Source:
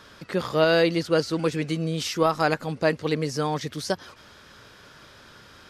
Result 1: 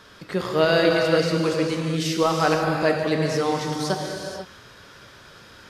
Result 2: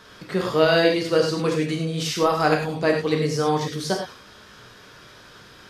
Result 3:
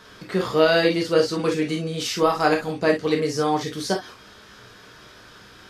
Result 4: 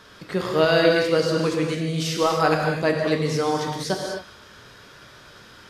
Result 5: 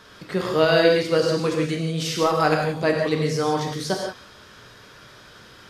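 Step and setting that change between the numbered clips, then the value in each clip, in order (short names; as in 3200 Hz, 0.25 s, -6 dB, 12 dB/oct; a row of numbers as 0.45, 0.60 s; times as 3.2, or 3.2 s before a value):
non-linear reverb, gate: 520, 130, 80, 290, 200 ms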